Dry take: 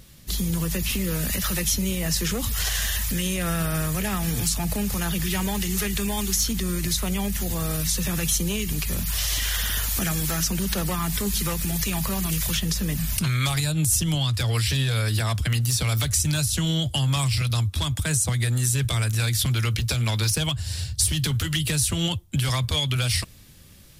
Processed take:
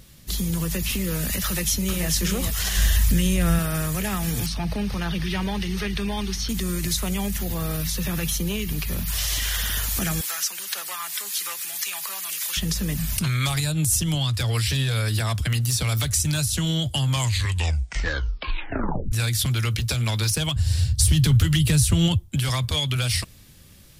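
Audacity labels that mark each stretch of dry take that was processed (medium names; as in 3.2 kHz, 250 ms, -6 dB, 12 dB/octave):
1.450000	2.070000	echo throw 430 ms, feedback 25%, level -5.5 dB
2.760000	3.590000	bass shelf 180 Hz +11.5 dB
4.460000	6.490000	Savitzky-Golay filter over 15 samples
7.380000	9.080000	peaking EQ 7.8 kHz -7.5 dB 0.86 oct
10.210000	12.570000	high-pass 1.1 kHz
17.060000	17.060000	tape stop 2.06 s
20.560000	22.290000	bass shelf 210 Hz +11 dB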